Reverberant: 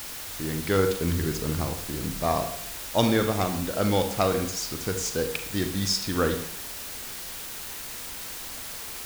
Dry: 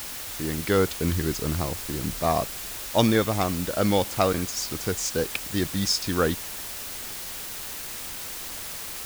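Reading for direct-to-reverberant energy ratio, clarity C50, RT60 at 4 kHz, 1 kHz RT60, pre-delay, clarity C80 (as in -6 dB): 6.5 dB, 9.0 dB, 0.55 s, 0.65 s, 36 ms, 12.5 dB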